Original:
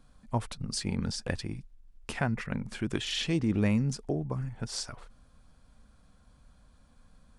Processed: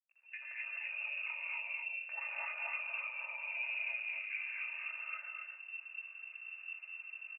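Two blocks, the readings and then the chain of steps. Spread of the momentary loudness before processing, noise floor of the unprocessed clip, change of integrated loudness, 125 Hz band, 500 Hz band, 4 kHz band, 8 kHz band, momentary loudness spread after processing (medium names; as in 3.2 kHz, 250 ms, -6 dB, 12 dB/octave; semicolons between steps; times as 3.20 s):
14 LU, -61 dBFS, -7.5 dB, under -40 dB, -22.5 dB, -15.5 dB, under -40 dB, 8 LU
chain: fade-in on the opening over 0.96 s; comb 3.4 ms, depth 71%; peak limiter -24 dBFS, peak gain reduction 9.5 dB; compression 5:1, threshold -39 dBFS, peak gain reduction 10.5 dB; vibrato 0.99 Hz 15 cents; companded quantiser 6-bit; distance through air 350 m; delay 255 ms -3 dB; gated-style reverb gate 280 ms rising, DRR -5 dB; frequency inversion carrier 2.7 kHz; brick-wall FIR high-pass 470 Hz; trim -5 dB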